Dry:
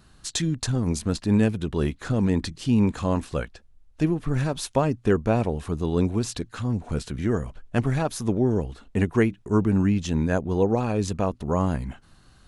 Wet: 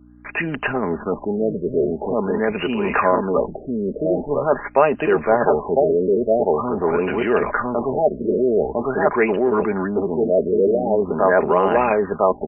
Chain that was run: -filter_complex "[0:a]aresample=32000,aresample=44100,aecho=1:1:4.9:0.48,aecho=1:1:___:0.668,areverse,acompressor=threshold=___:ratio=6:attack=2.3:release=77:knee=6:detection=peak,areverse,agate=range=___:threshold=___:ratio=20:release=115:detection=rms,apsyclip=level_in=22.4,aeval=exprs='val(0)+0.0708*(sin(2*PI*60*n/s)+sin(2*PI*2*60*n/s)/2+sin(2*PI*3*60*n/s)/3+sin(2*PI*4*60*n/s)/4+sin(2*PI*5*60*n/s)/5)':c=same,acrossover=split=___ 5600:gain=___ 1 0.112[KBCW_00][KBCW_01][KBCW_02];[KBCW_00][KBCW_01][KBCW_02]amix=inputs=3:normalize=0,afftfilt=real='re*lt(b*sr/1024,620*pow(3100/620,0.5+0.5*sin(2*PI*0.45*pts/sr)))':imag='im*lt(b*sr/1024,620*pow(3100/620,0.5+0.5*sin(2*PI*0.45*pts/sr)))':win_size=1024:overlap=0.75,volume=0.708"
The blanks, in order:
1004, 0.0251, 0.0282, 0.00562, 360, 0.0631